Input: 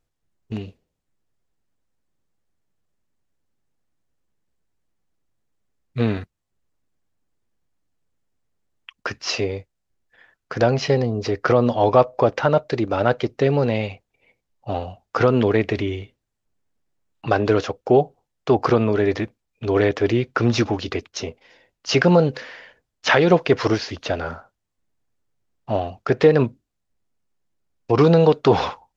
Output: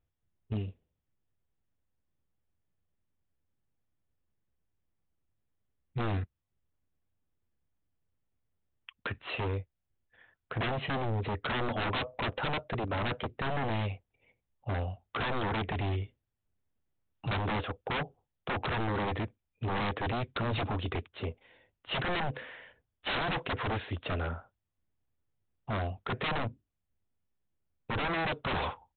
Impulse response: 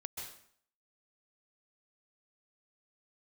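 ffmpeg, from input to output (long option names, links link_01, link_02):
-af "equalizer=frequency=80:width_type=o:width=1.5:gain=9,aresample=8000,aeval=exprs='0.119*(abs(mod(val(0)/0.119+3,4)-2)-1)':channel_layout=same,aresample=44100,volume=-8dB"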